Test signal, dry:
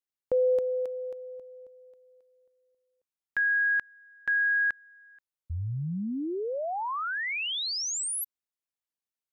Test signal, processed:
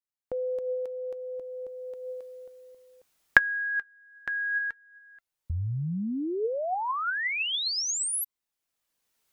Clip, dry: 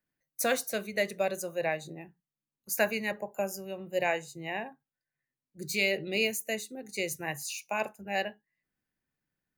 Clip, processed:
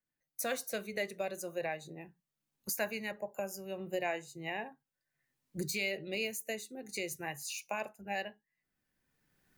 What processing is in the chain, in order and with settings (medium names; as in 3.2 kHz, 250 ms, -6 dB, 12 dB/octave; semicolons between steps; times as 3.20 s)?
recorder AGC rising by 17 dB/s, up to +29 dB; flange 0.36 Hz, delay 0.9 ms, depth 2.1 ms, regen +82%; trim -3 dB